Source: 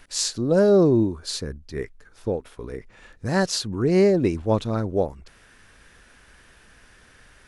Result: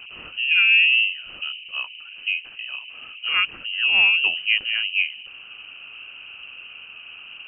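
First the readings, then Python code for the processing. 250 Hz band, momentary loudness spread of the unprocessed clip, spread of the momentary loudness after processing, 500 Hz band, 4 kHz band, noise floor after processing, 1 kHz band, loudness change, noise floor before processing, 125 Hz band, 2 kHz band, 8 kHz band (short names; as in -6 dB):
under -30 dB, 18 LU, 24 LU, under -30 dB, +12.0 dB, -42 dBFS, -5.0 dB, +3.5 dB, -54 dBFS, under -30 dB, +18.5 dB, under -40 dB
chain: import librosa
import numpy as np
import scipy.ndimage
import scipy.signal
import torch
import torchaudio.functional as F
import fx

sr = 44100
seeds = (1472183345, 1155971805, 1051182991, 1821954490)

y = fx.dmg_noise_band(x, sr, seeds[0], low_hz=79.0, high_hz=490.0, level_db=-41.0)
y = fx.freq_invert(y, sr, carrier_hz=3000)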